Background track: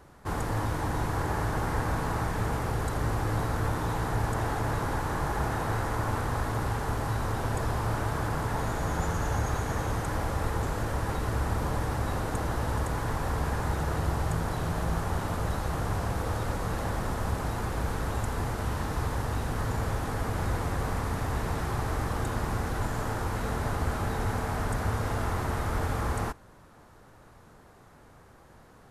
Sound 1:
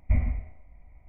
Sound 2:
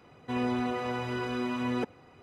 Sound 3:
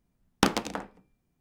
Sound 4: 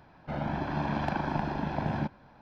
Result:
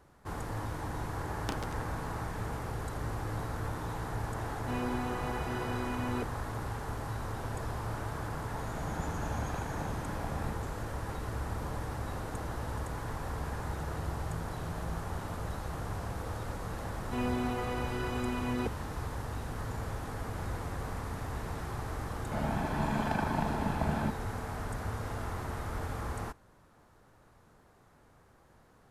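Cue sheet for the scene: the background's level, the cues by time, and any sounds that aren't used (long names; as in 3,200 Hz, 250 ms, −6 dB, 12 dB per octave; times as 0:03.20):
background track −7.5 dB
0:01.06: mix in 3 −15.5 dB
0:04.39: mix in 2 −6 dB
0:08.46: mix in 4 −10.5 dB
0:16.83: mix in 2 −3.5 dB
0:22.03: mix in 4 −2 dB + comb filter 4.6 ms, depth 36%
not used: 1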